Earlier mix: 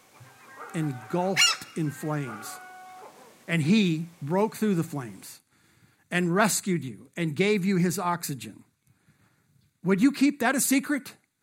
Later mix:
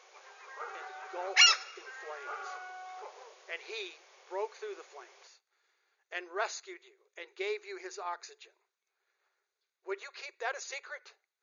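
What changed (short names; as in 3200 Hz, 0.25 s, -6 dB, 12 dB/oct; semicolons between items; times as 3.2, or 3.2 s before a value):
speech -10.5 dB; master: add brick-wall FIR band-pass 360–7000 Hz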